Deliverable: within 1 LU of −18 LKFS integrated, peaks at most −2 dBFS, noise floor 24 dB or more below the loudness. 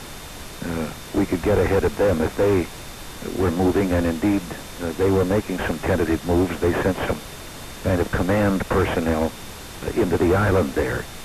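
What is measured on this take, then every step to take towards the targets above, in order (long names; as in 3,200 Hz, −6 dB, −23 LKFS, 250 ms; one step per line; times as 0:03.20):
interfering tone 3,600 Hz; level of the tone −49 dBFS; background noise floor −37 dBFS; target noise floor −46 dBFS; integrated loudness −22.0 LKFS; sample peak −8.5 dBFS; target loudness −18.0 LKFS
→ notch filter 3,600 Hz, Q 30
noise reduction from a noise print 9 dB
level +4 dB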